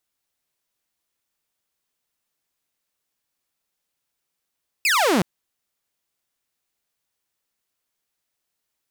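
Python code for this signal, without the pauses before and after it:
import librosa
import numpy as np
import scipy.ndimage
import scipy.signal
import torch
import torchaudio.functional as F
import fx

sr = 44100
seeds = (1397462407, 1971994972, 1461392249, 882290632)

y = fx.laser_zap(sr, level_db=-13.5, start_hz=2700.0, end_hz=160.0, length_s=0.37, wave='saw')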